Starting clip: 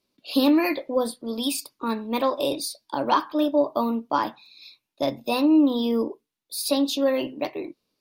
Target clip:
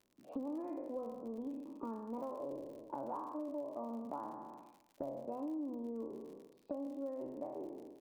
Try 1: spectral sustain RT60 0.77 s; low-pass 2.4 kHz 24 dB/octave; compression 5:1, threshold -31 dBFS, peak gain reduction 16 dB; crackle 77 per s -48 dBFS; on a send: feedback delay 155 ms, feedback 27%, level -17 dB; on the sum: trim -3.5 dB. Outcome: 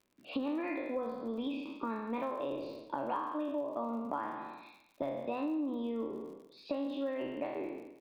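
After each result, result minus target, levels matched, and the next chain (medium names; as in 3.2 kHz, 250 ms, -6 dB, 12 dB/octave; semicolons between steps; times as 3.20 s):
2 kHz band +16.5 dB; compression: peak gain reduction -5 dB
spectral sustain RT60 0.77 s; low-pass 980 Hz 24 dB/octave; compression 5:1, threshold -31 dBFS, peak gain reduction 15 dB; crackle 77 per s -48 dBFS; on a send: feedback delay 155 ms, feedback 27%, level -17 dB; on the sum: trim -3.5 dB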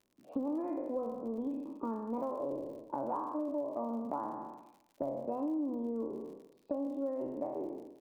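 compression: peak gain reduction -6 dB
spectral sustain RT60 0.77 s; low-pass 980 Hz 24 dB/octave; compression 5:1, threshold -38.5 dBFS, peak gain reduction 21 dB; crackle 77 per s -48 dBFS; on a send: feedback delay 155 ms, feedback 27%, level -17 dB; on the sum: trim -3.5 dB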